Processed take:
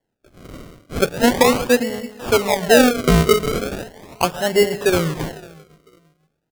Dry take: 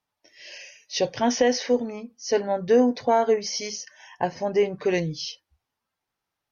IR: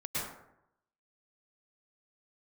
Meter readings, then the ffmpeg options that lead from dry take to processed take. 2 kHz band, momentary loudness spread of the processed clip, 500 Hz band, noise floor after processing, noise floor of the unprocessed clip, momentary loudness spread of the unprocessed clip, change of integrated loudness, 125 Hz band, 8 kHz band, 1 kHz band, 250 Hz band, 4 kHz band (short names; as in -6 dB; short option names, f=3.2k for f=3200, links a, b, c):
+12.0 dB, 15 LU, +5.5 dB, -75 dBFS, -84 dBFS, 15 LU, +7.0 dB, +13.0 dB, n/a, +5.5 dB, +7.0 dB, +7.5 dB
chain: -filter_complex "[0:a]asplit=2[a][b];[b]adelay=499,lowpass=f=2.1k:p=1,volume=-22.5dB,asplit=2[c][d];[d]adelay=499,lowpass=f=2.1k:p=1,volume=0.25[e];[a][c][e]amix=inputs=3:normalize=0,asplit=2[f][g];[1:a]atrim=start_sample=2205[h];[g][h]afir=irnorm=-1:irlink=0,volume=-17dB[i];[f][i]amix=inputs=2:normalize=0,acrusher=samples=35:mix=1:aa=0.000001:lfo=1:lforange=35:lforate=0.38,volume=5.5dB"